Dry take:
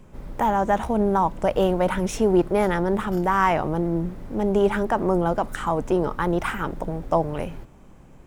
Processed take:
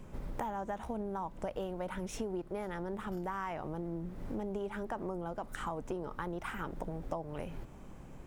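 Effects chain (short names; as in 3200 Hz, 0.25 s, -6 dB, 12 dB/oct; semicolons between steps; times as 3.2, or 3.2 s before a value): compressor 8:1, threshold -34 dBFS, peak gain reduction 20 dB; gain -1.5 dB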